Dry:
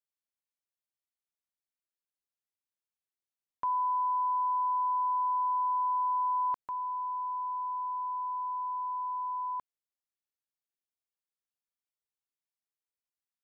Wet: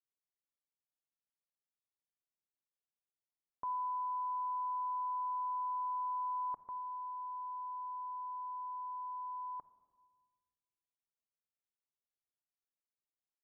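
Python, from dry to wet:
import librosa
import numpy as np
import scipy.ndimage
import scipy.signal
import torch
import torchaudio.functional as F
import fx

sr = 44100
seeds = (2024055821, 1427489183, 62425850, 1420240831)

y = scipy.signal.sosfilt(scipy.signal.butter(2, 1000.0, 'lowpass', fs=sr, output='sos'), x)
y = fx.room_shoebox(y, sr, seeds[0], volume_m3=1600.0, walls='mixed', distance_m=0.42)
y = F.gain(torch.from_numpy(y), -5.0).numpy()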